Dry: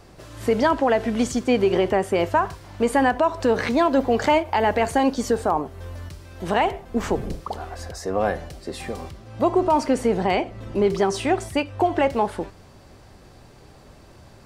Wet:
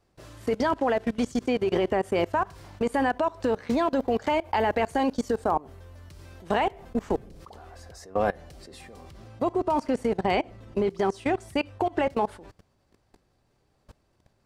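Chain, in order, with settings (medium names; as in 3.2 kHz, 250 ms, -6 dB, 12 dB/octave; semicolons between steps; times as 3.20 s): level held to a coarse grid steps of 23 dB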